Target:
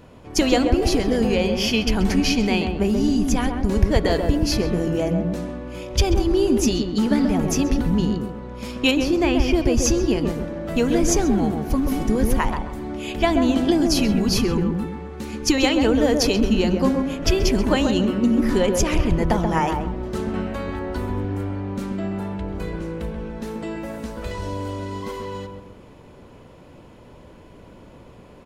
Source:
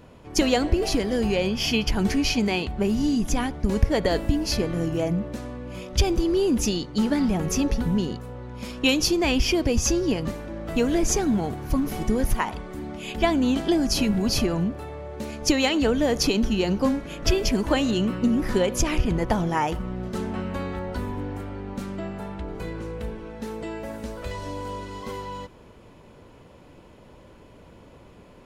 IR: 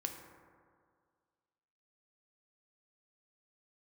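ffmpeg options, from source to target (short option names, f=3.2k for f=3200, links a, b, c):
-filter_complex "[0:a]asettb=1/sr,asplit=3[a][b][c];[a]atrim=end=8.914[d];[b]atrim=start=8.91:end=9.76,asetpts=PTS-STARTPTS,afade=t=in:d=0.004:c=qsin,afade=t=out:st=0.846:d=0.004:c=qsin,acrossover=split=2600[e][f];[f]acompressor=threshold=-37dB:ratio=4:attack=1:release=60[g];[e][g]amix=inputs=2:normalize=0[h];[c]atrim=start=9.756[i];[d][h]acrossfade=d=0.004:c1=hsin:c2=qsin[j];[j][i]acrossfade=d=0.004:c1=qsin:c2=hsin,asettb=1/sr,asplit=3[k][l][m];[k]atrim=end=14.244[n];[l]atrim=start=14.24:end=15.58,asetpts=PTS-STARTPTS,afade=t=in:d=0.004:c=qsin,afade=t=out:st=1.336:d=0.004:c=qsin,asuperstop=centerf=640:order=12:qfactor=3.5[o];[m]atrim=start=15.576[p];[n][o]acrossfade=d=0.004:c1=hsin:c2=qsin[q];[q][p]acrossfade=d=0.004:c1=qsin:c2=hsin,asplit=2[r][s];[s]adelay=133,lowpass=f=990:p=1,volume=-3dB,asplit=2[t][u];[u]adelay=133,lowpass=f=990:p=1,volume=0.4,asplit=2[v][w];[w]adelay=133,lowpass=f=990:p=1,volume=0.4,asplit=2[x][y];[y]adelay=133,lowpass=f=990:p=1,volume=0.4,asplit=2[z][aa];[aa]adelay=133,lowpass=f=990:p=1,volume=0.4[ab];[r][t][v][x][z][ab]amix=inputs=6:normalize=0,volume=2dB"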